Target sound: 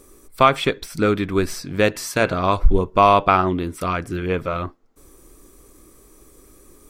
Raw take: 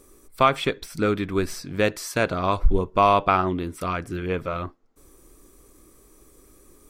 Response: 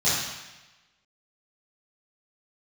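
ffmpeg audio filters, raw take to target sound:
-filter_complex "[0:a]asplit=3[link_01][link_02][link_03];[link_01]afade=type=out:start_time=1.94:duration=0.02[link_04];[link_02]bandreject=frequency=119.5:width_type=h:width=4,bandreject=frequency=239:width_type=h:width=4,bandreject=frequency=358.5:width_type=h:width=4,bandreject=frequency=478:width_type=h:width=4,bandreject=frequency=597.5:width_type=h:width=4,bandreject=frequency=717:width_type=h:width=4,bandreject=frequency=836.5:width_type=h:width=4,bandreject=frequency=956:width_type=h:width=4,bandreject=frequency=1075.5:width_type=h:width=4,bandreject=frequency=1195:width_type=h:width=4,bandreject=frequency=1314.5:width_type=h:width=4,bandreject=frequency=1434:width_type=h:width=4,bandreject=frequency=1553.5:width_type=h:width=4,bandreject=frequency=1673:width_type=h:width=4,bandreject=frequency=1792.5:width_type=h:width=4,bandreject=frequency=1912:width_type=h:width=4,bandreject=frequency=2031.5:width_type=h:width=4,bandreject=frequency=2151:width_type=h:width=4,bandreject=frequency=2270.5:width_type=h:width=4,bandreject=frequency=2390:width_type=h:width=4,bandreject=frequency=2509.5:width_type=h:width=4,bandreject=frequency=2629:width_type=h:width=4,bandreject=frequency=2748.5:width_type=h:width=4,bandreject=frequency=2868:width_type=h:width=4,bandreject=frequency=2987.5:width_type=h:width=4,bandreject=frequency=3107:width_type=h:width=4,bandreject=frequency=3226.5:width_type=h:width=4,afade=type=in:start_time=1.94:duration=0.02,afade=type=out:start_time=2.38:duration=0.02[link_05];[link_03]afade=type=in:start_time=2.38:duration=0.02[link_06];[link_04][link_05][link_06]amix=inputs=3:normalize=0,volume=4dB"

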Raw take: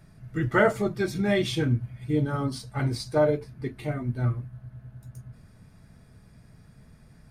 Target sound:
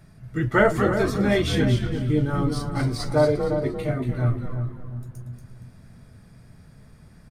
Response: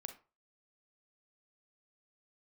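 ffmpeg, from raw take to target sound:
-filter_complex "[0:a]asplit=2[link_01][link_02];[link_02]asplit=4[link_03][link_04][link_05][link_06];[link_03]adelay=234,afreqshift=-120,volume=-7dB[link_07];[link_04]adelay=468,afreqshift=-240,volume=-17.2dB[link_08];[link_05]adelay=702,afreqshift=-360,volume=-27.3dB[link_09];[link_06]adelay=936,afreqshift=-480,volume=-37.5dB[link_10];[link_07][link_08][link_09][link_10]amix=inputs=4:normalize=0[link_11];[link_01][link_11]amix=inputs=2:normalize=0,asettb=1/sr,asplit=3[link_12][link_13][link_14];[link_12]atrim=end=1.944[link_15];[link_13]atrim=start=1.94:end=3.09,asetpts=PTS-STARTPTS,afade=type=in:duration=0.004:curve=qsin,afade=type=out:start_time=1.146:duration=0.004:curve=qsin,aeval=exprs='sgn(val(0))*max(abs(val(0))-0.00112,0)':channel_layout=same[link_16];[link_14]atrim=start=3.086[link_17];[link_15][link_16]acrossfade=duration=0.004:curve1=hsin:curve2=qsin[link_18];[link_18][link_17]acrossfade=duration=0.004:curve1=qsin:curve2=hsin,asplit=2[link_19][link_20];[link_20]adelay=347,lowpass=frequency=1000:poles=1,volume=-6.5dB,asplit=2[link_21][link_22];[link_22]adelay=347,lowpass=frequency=1000:poles=1,volume=0.32,asplit=2[link_23][link_24];[link_24]adelay=347,lowpass=frequency=1000:poles=1,volume=0.32,asplit=2[link_25][link_26];[link_26]adelay=347,lowpass=frequency=1000:poles=1,volume=0.32[link_27];[link_21][link_23][link_25][link_27]amix=inputs=4:normalize=0[link_28];[link_19][link_28]amix=inputs=2:normalize=0,volume=2.5dB"

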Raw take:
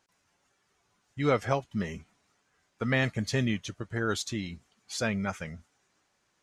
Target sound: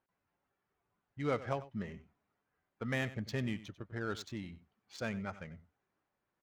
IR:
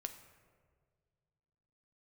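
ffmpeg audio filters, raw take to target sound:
-af "adynamicsmooth=sensitivity=5.5:basefreq=2100,aecho=1:1:94:0.158,volume=-8.5dB"

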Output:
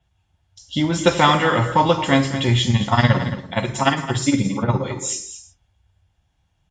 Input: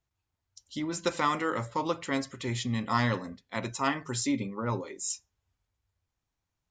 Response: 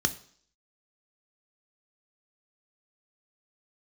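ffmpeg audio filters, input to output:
-filter_complex "[0:a]asettb=1/sr,asplit=3[link_01][link_02][link_03];[link_01]atrim=end=2.644[link_04];[link_02]atrim=start=2.64:end=4.82,asetpts=PTS-STARTPTS,afade=type=in:duration=0.004:curve=qsin,afade=type=out:start_time=2.176:duration=0.004:curve=qsin,tremolo=f=17:d=0.84[link_05];[link_03]atrim=start=4.816[link_06];[link_04][link_05]acrossfade=duration=0.004:curve1=hsin:curve2=qsin[link_07];[link_07][link_06]acrossfade=duration=0.004:curve1=qsin:curve2=hsin,aecho=1:1:219:0.266[link_08];[1:a]atrim=start_sample=2205,atrim=end_sample=3969,asetrate=22050,aresample=44100[link_09];[link_08][link_09]afir=irnorm=-1:irlink=0"

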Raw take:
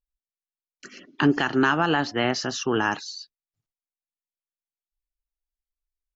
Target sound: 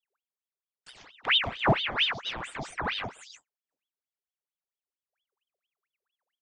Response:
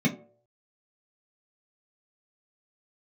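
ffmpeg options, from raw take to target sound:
-filter_complex "[0:a]flanger=delay=7.9:depth=9:regen=35:speed=1.6:shape=triangular,acrossover=split=540[link_01][link_02];[link_01]aecho=1:1:4:0.57[link_03];[link_02]acompressor=threshold=-41dB:ratio=5[link_04];[link_03][link_04]amix=inputs=2:normalize=0,aeval=exprs='clip(val(0),-1,0.0668)':channel_layout=same,asplit=2[link_05][link_06];[1:a]atrim=start_sample=2205,asetrate=66150,aresample=44100[link_07];[link_06][link_07]afir=irnorm=-1:irlink=0,volume=-21dB[link_08];[link_05][link_08]amix=inputs=2:normalize=0,asetrate=42336,aresample=44100,aeval=exprs='val(0)*sin(2*PI*1900*n/s+1900*0.8/4.4*sin(2*PI*4.4*n/s))':channel_layout=same"

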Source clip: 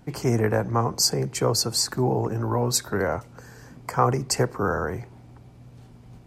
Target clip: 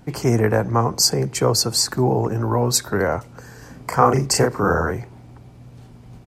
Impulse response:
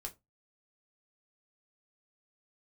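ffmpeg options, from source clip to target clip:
-filter_complex "[0:a]asplit=3[link_01][link_02][link_03];[link_01]afade=type=out:start_time=3.61:duration=0.02[link_04];[link_02]asplit=2[link_05][link_06];[link_06]adelay=36,volume=-3dB[link_07];[link_05][link_07]amix=inputs=2:normalize=0,afade=type=in:start_time=3.61:duration=0.02,afade=type=out:start_time=4.91:duration=0.02[link_08];[link_03]afade=type=in:start_time=4.91:duration=0.02[link_09];[link_04][link_08][link_09]amix=inputs=3:normalize=0,volume=4.5dB"

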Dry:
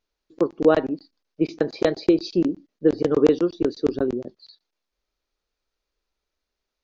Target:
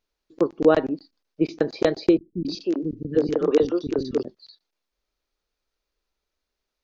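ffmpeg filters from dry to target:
ffmpeg -i in.wav -filter_complex "[0:a]asettb=1/sr,asplit=3[link_01][link_02][link_03];[link_01]atrim=end=2.174[link_04];[link_02]atrim=start=2.17:end=4.23,asetpts=PTS-STARTPTS,afade=type=in:duration=0.004:curve=qsin,afade=type=out:start_time=2.056:duration=0.004:curve=qsin,acrossover=split=270|1500[link_05][link_06][link_07];[link_07]adelay=280[link_08];[link_06]adelay=310[link_09];[link_05][link_09][link_08]amix=inputs=3:normalize=0,atrim=end_sample=90846[link_10];[link_03]atrim=start=4.226[link_11];[link_04][link_10]acrossfade=duration=0.004:curve1=hsin:curve2=qsin[link_12];[link_12][link_11]acrossfade=duration=0.004:curve1=qsin:curve2=hsin" out.wav

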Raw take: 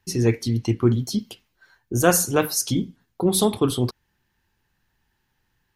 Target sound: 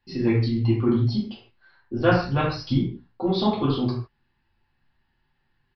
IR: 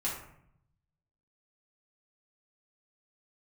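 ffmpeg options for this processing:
-filter_complex "[0:a]aresample=11025,aresample=44100[link_01];[1:a]atrim=start_sample=2205,afade=type=out:start_time=0.22:duration=0.01,atrim=end_sample=10143[link_02];[link_01][link_02]afir=irnorm=-1:irlink=0,asplit=3[link_03][link_04][link_05];[link_03]afade=type=out:start_time=2.1:duration=0.02[link_06];[link_04]asubboost=boost=6.5:cutoff=180,afade=type=in:start_time=2.1:duration=0.02,afade=type=out:start_time=2.77:duration=0.02[link_07];[link_05]afade=type=in:start_time=2.77:duration=0.02[link_08];[link_06][link_07][link_08]amix=inputs=3:normalize=0,volume=-5.5dB"

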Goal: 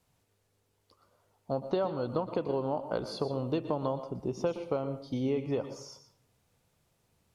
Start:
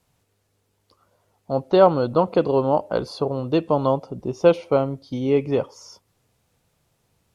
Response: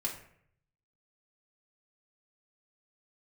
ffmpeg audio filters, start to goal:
-filter_complex "[0:a]acompressor=threshold=-22dB:ratio=10,asplit=2[link_01][link_02];[1:a]atrim=start_sample=2205,adelay=118[link_03];[link_02][link_03]afir=irnorm=-1:irlink=0,volume=-13dB[link_04];[link_01][link_04]amix=inputs=2:normalize=0,volume=-5dB"

